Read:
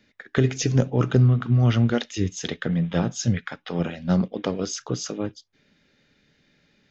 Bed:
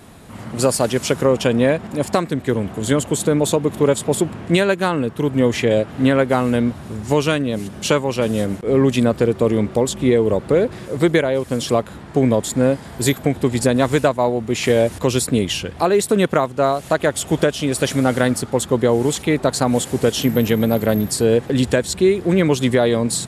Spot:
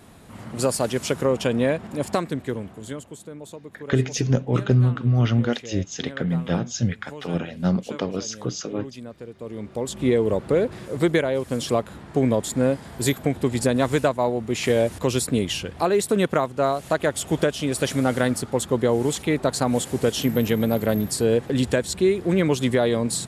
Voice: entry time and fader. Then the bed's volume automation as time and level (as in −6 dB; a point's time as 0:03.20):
3.55 s, −0.5 dB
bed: 0:02.33 −5.5 dB
0:03.25 −22 dB
0:09.32 −22 dB
0:10.05 −4.5 dB